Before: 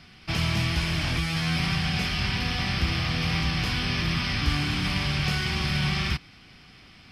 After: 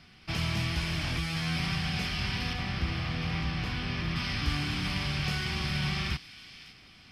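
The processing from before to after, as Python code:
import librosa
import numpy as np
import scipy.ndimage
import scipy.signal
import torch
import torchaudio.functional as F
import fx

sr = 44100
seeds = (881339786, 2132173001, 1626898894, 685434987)

y = fx.high_shelf(x, sr, hz=4000.0, db=-10.0, at=(2.53, 4.16))
y = fx.echo_wet_highpass(y, sr, ms=557, feedback_pct=35, hz=2300.0, wet_db=-13.0)
y = y * librosa.db_to_amplitude(-5.0)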